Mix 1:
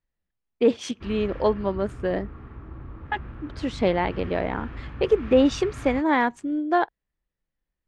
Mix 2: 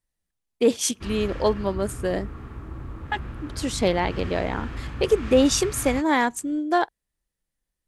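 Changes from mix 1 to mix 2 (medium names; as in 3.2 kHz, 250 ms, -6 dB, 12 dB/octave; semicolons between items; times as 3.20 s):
background +3.5 dB; master: remove low-pass 2.8 kHz 12 dB/octave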